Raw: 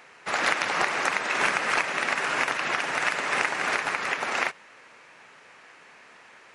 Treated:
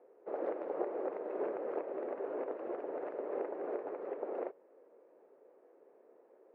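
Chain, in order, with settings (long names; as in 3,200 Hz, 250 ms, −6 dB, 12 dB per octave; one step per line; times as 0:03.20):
flat-topped band-pass 430 Hz, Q 1.8
level +1 dB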